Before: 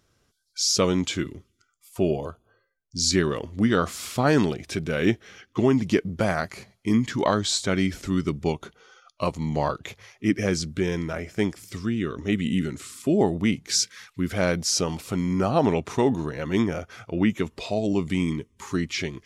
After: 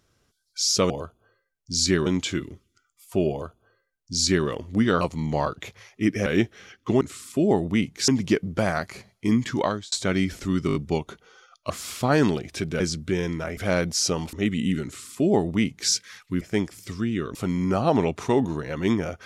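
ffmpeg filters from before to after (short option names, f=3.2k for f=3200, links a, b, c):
-filter_complex "[0:a]asplit=18[a][b][c][d][e][f][g][h][i][j][k][l][m][n][o][p][q][r];[a]atrim=end=0.902[s];[b]atrim=start=2.148:end=3.312[t];[c]atrim=start=0.898:end=3.852[u];[d]atrim=start=9.238:end=10.492[v];[e]atrim=start=4.948:end=5.702[w];[f]atrim=start=12.708:end=13.782[x];[g]atrim=start=5.698:end=7.54,asetpts=PTS-STARTPTS,afade=t=out:st=1.502:d=0.34[y];[h]atrim=start=7.54:end=8.312,asetpts=PTS-STARTPTS,afade=t=in:d=0.004:c=hsin[z];[i]atrim=start=8.288:end=8.312[aa];[j]atrim=start=8.288:end=8.312[ab];[k]atrim=start=8.288:end=8.312[ac];[l]atrim=start=8.288:end=9.242[ad];[m]atrim=start=3.848:end=4.952[ae];[n]atrim=start=10.488:end=11.262[af];[o]atrim=start=14.278:end=15.042[ag];[p]atrim=start=12.198:end=14.282[ah];[q]atrim=start=11.258:end=12.202[ai];[r]atrim=start=15.038[aj];[s][t]acrossfade=d=0.004:c1=hsin:c2=hsin[ak];[ak][u]acrossfade=d=0.004:c1=hsin:c2=hsin[al];[al][v]acrossfade=d=0.004:c1=hsin:c2=hsin[am];[am][w]acrossfade=d=0.004:c1=hsin:c2=hsin[an];[an][x]acrossfade=d=0.004:c1=hsin:c2=hsin[ao];[y][z]concat=n=2:v=0:a=1[ap];[ao][ap]acrossfade=d=0.004:c1=hsin:c2=hsin[aq];[aq][aa]acrossfade=d=0.004:c1=hsin:c2=hsin[ar];[ar][ab]acrossfade=d=0.004:c1=hsin:c2=hsin[as];[as][ac]acrossfade=d=0.004:c1=hsin:c2=hsin[at];[at][ad]acrossfade=d=0.004:c1=hsin:c2=hsin[au];[au][ae]acrossfade=d=0.004:c1=hsin:c2=hsin[av];[av][af]acrossfade=d=0.004:c1=hsin:c2=hsin[aw];[aw][ag]acrossfade=d=0.004:c1=hsin:c2=hsin[ax];[ax][ah]acrossfade=d=0.004:c1=hsin:c2=hsin[ay];[ay][ai]acrossfade=d=0.004:c1=hsin:c2=hsin[az];[az][aj]acrossfade=d=0.004:c1=hsin:c2=hsin"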